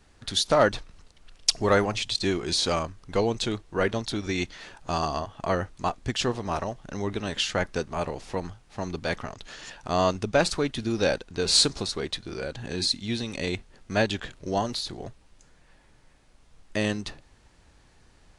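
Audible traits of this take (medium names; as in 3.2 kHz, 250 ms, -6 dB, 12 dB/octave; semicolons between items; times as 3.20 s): noise floor -59 dBFS; spectral tilt -3.5 dB/octave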